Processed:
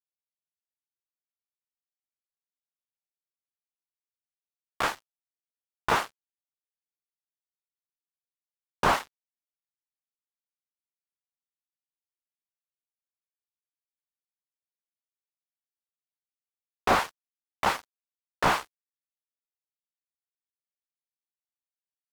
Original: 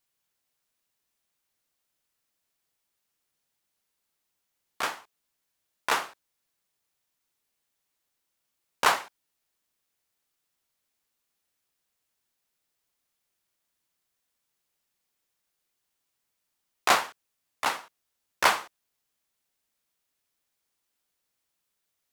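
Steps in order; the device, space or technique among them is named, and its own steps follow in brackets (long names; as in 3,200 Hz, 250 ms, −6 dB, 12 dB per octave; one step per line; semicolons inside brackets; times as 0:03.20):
early transistor amplifier (dead-zone distortion −42.5 dBFS; slew-rate limiting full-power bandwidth 69 Hz)
level +6 dB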